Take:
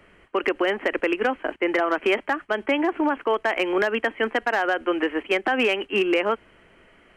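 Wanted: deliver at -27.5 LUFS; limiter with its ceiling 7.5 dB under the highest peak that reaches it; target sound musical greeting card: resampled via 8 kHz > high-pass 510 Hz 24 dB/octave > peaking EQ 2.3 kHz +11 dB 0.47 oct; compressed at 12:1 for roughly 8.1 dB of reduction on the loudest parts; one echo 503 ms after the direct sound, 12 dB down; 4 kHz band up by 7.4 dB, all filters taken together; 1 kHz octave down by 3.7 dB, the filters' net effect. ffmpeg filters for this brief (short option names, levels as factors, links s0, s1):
-af "equalizer=f=1000:t=o:g=-6,equalizer=f=4000:t=o:g=7.5,acompressor=threshold=0.0501:ratio=12,alimiter=limit=0.0708:level=0:latency=1,aecho=1:1:503:0.251,aresample=8000,aresample=44100,highpass=f=510:w=0.5412,highpass=f=510:w=1.3066,equalizer=f=2300:t=o:w=0.47:g=11,volume=1.41"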